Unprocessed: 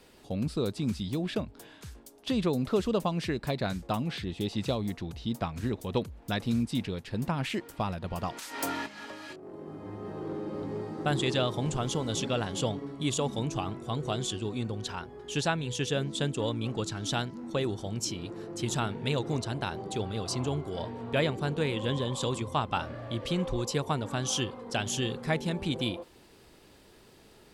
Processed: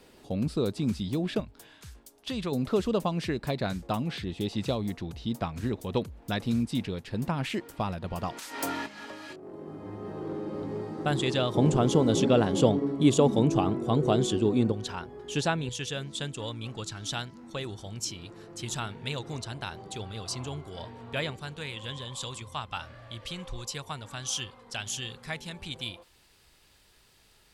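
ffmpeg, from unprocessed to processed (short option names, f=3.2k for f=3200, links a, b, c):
-af "asetnsamples=n=441:p=0,asendcmd='1.4 equalizer g -6;2.52 equalizer g 1;11.55 equalizer g 11;14.72 equalizer g 2;15.69 equalizer g -8;21.36 equalizer g -14.5',equalizer=f=320:t=o:w=2.9:g=2.5"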